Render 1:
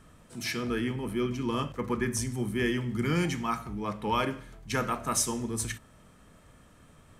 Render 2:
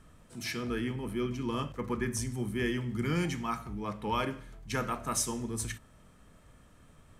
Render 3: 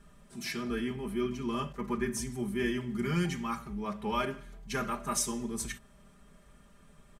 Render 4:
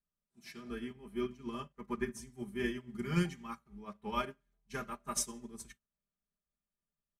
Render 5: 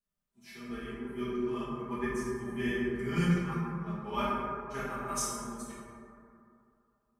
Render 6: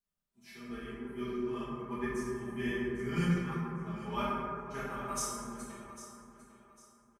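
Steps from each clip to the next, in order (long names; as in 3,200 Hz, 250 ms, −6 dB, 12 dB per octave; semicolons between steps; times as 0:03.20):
low-shelf EQ 62 Hz +6.5 dB; level −3.5 dB
comb filter 5 ms, depth 95%; level −3 dB
expander for the loud parts 2.5 to 1, over −52 dBFS; level +1 dB
dense smooth reverb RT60 2.6 s, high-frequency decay 0.3×, DRR −8.5 dB; level −4 dB
repeating echo 801 ms, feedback 31%, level −14.5 dB; level −2.5 dB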